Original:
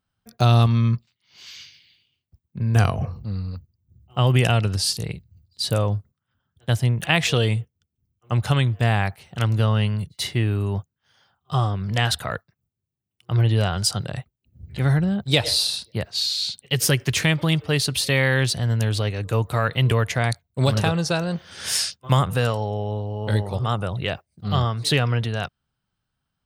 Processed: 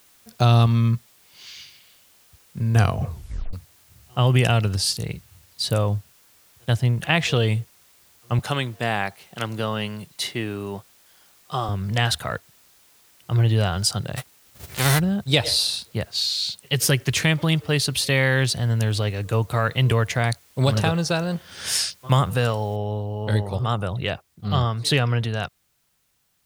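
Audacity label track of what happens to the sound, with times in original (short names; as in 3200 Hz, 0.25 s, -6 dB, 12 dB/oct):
3.080000	3.080000	tape stop 0.45 s
6.740000	7.480000	high shelf 6100 Hz -8 dB
8.390000	11.690000	HPF 220 Hz
14.160000	14.980000	spectral whitening exponent 0.3
22.760000	22.760000	noise floor step -56 dB -69 dB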